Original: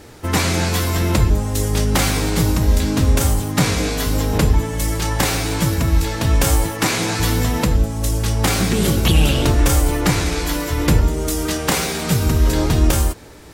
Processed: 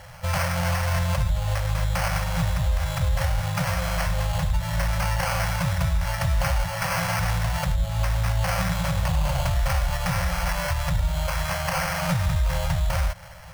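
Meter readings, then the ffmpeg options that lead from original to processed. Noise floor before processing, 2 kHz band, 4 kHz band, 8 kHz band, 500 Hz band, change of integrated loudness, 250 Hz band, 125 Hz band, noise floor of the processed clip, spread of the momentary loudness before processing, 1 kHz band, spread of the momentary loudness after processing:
−27 dBFS, −4.0 dB, −9.0 dB, −11.5 dB, −9.0 dB, −7.0 dB, −13.0 dB, −6.0 dB, −30 dBFS, 4 LU, −3.5 dB, 2 LU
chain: -af "acrusher=samples=12:mix=1:aa=0.000001,alimiter=limit=-15dB:level=0:latency=1:release=135,afftfilt=real='re*(1-between(b*sr/4096,190,500))':imag='im*(1-between(b*sr/4096,190,500))':win_size=4096:overlap=0.75"

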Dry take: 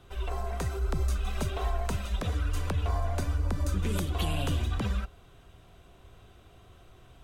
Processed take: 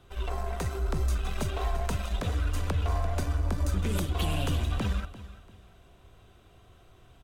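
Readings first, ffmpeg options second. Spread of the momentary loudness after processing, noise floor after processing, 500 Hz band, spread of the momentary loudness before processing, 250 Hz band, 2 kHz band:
5 LU, −57 dBFS, +1.0 dB, 4 LU, +1.0 dB, +1.0 dB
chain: -filter_complex "[0:a]aecho=1:1:343|686|1029:0.211|0.0634|0.019,asplit=2[link_01][link_02];[link_02]acrusher=bits=4:mix=0:aa=0.5,volume=-9.5dB[link_03];[link_01][link_03]amix=inputs=2:normalize=0,volume=-2dB"

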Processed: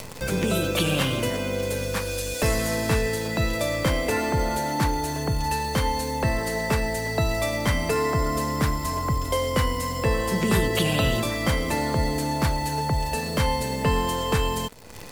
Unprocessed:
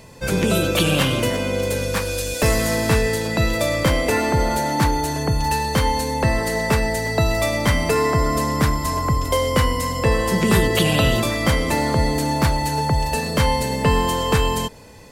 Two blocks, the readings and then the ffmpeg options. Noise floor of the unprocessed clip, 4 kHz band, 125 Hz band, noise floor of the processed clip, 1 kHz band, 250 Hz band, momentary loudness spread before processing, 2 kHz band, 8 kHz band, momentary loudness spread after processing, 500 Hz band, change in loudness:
−26 dBFS, −5.0 dB, −5.0 dB, −30 dBFS, −5.0 dB, −5.0 dB, 4 LU, −5.0 dB, −4.5 dB, 4 LU, −5.0 dB, −5.0 dB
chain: -af "acrusher=bits=7:dc=4:mix=0:aa=0.000001,acompressor=mode=upward:threshold=-20dB:ratio=2.5,volume=-5dB"

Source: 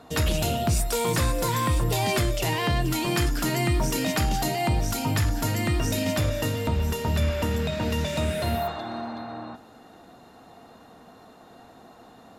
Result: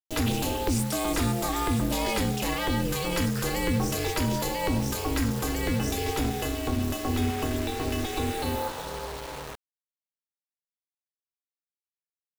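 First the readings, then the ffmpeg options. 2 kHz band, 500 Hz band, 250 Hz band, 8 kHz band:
−2.5 dB, −2.5 dB, +0.5 dB, −2.0 dB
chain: -af "acrusher=bits=5:mix=0:aa=0.000001,aeval=exprs='val(0)*sin(2*PI*170*n/s)':channel_layout=same"

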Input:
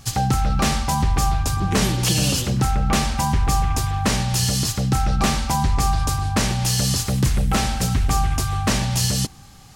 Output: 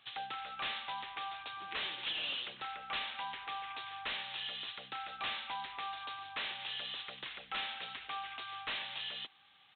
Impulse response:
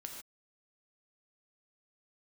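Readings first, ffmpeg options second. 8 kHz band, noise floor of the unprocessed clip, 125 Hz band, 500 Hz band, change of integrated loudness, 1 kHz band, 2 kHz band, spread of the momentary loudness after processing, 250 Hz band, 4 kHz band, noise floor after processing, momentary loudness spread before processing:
below −40 dB, −43 dBFS, below −40 dB, −24.0 dB, −19.0 dB, −17.5 dB, −11.0 dB, 6 LU, −37.0 dB, −12.0 dB, −64 dBFS, 2 LU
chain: -filter_complex "[0:a]lowshelf=frequency=210:gain=-5.5,acrossover=split=290[link_01][link_02];[link_01]acompressor=threshold=-38dB:ratio=2.5[link_03];[link_03][link_02]amix=inputs=2:normalize=0,aderivative,aresample=8000,volume=34.5dB,asoftclip=hard,volume=-34.5dB,aresample=44100,volume=1dB"

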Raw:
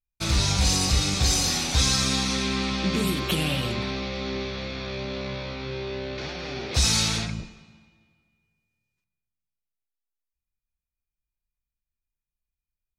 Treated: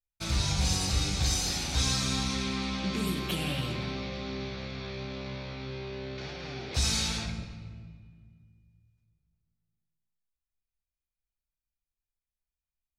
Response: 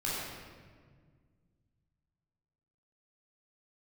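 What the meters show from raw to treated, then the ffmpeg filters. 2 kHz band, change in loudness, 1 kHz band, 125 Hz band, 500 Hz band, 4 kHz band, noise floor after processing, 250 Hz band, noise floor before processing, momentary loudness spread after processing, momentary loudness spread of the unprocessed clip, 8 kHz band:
−6.5 dB, −6.0 dB, −6.0 dB, −5.0 dB, −7.0 dB, −6.5 dB, below −85 dBFS, −5.5 dB, below −85 dBFS, 12 LU, 12 LU, −7.0 dB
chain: -filter_complex "[0:a]asplit=2[link_01][link_02];[1:a]atrim=start_sample=2205[link_03];[link_02][link_03]afir=irnorm=-1:irlink=0,volume=-11.5dB[link_04];[link_01][link_04]amix=inputs=2:normalize=0,volume=-8.5dB"

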